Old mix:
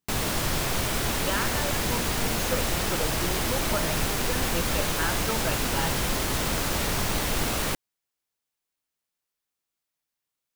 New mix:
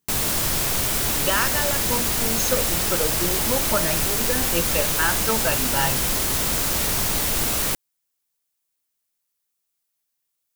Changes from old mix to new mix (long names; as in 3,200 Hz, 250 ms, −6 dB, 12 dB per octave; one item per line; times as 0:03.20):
speech +7.0 dB
master: add high-shelf EQ 5,600 Hz +11 dB